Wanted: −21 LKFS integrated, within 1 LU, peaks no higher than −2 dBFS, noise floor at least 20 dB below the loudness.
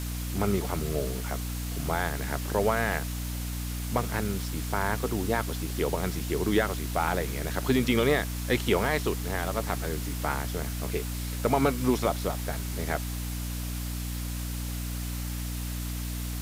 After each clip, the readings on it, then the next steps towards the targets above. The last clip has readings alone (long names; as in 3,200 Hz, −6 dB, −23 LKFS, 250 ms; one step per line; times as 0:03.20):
mains hum 60 Hz; hum harmonics up to 300 Hz; level of the hum −31 dBFS; background noise floor −33 dBFS; target noise floor −50 dBFS; integrated loudness −29.5 LKFS; sample peak −11.5 dBFS; target loudness −21.0 LKFS
→ hum removal 60 Hz, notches 5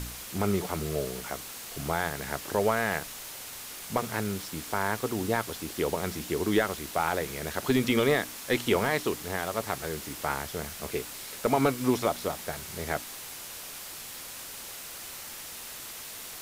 mains hum none found; background noise floor −42 dBFS; target noise floor −51 dBFS
→ broadband denoise 9 dB, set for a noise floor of −42 dBFS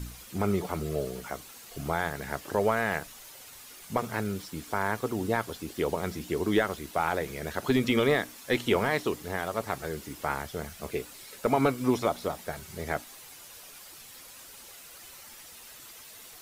background noise floor −49 dBFS; target noise floor −51 dBFS
→ broadband denoise 6 dB, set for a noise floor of −49 dBFS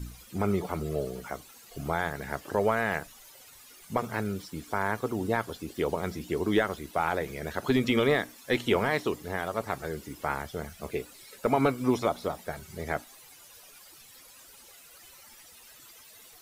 background noise floor −53 dBFS; integrated loudness −30.5 LKFS; sample peak −13.0 dBFS; target loudness −21.0 LKFS
→ level +9.5 dB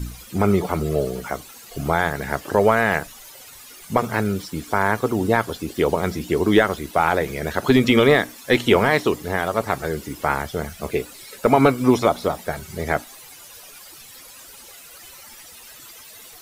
integrated loudness −21.0 LKFS; sample peak −3.5 dBFS; background noise floor −43 dBFS